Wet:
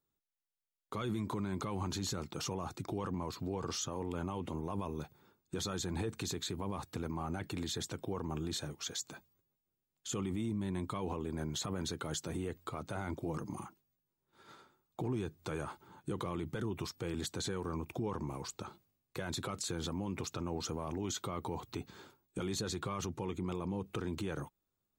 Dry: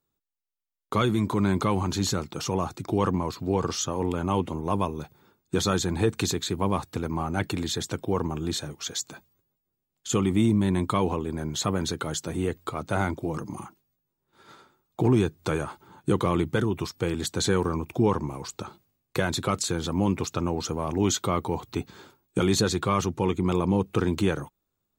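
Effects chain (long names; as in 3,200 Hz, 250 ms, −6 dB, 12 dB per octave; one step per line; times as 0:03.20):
brickwall limiter −22.5 dBFS, peak gain reduction 10.5 dB
level −6 dB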